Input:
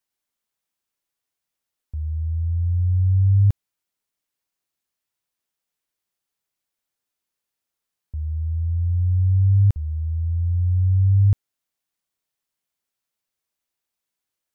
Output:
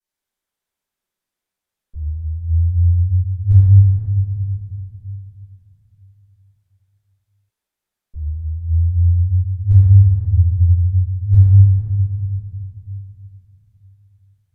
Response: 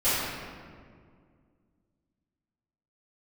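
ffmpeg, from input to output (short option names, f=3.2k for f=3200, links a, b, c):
-filter_complex "[1:a]atrim=start_sample=2205,asetrate=31311,aresample=44100[a];[0:a][a]afir=irnorm=-1:irlink=0,volume=-13.5dB"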